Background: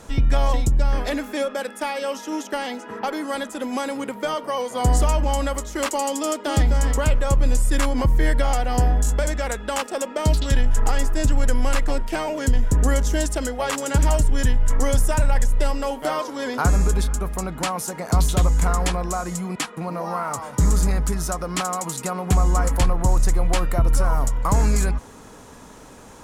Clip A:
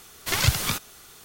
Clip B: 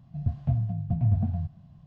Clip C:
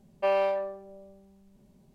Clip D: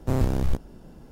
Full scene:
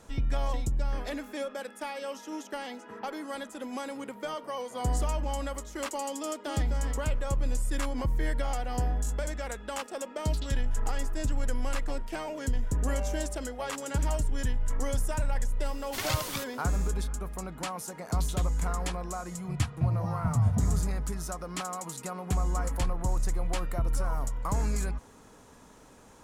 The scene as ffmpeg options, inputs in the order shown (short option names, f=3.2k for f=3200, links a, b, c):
-filter_complex "[0:a]volume=-10.5dB[a];[3:a]aecho=1:1:124:0.631,atrim=end=1.94,asetpts=PTS-STARTPTS,volume=-17dB,afade=t=in:d=0.004:c=hsin,afade=t=out:st=1.936:d=0.004:c=hsin,adelay=12640[b];[1:a]atrim=end=1.24,asetpts=PTS-STARTPTS,volume=-9dB,afade=t=in:d=0.004:c=hsin,afade=t=out:st=1.236:d=0.004:c=hsin,adelay=15660[c];[2:a]atrim=end=1.86,asetpts=PTS-STARTPTS,volume=-1.5dB,afade=t=in:d=0.004:c=hsin,afade=t=out:st=1.856:d=0.004:c=hsin,adelay=19340[d];[a][b][c][d]amix=inputs=4:normalize=0"